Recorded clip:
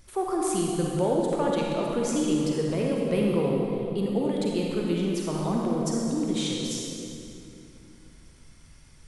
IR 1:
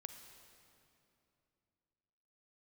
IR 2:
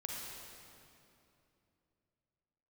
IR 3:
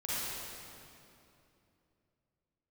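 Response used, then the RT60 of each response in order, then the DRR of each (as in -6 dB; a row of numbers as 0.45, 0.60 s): 2; 2.8, 2.8, 2.8 s; 7.0, -2.5, -10.5 dB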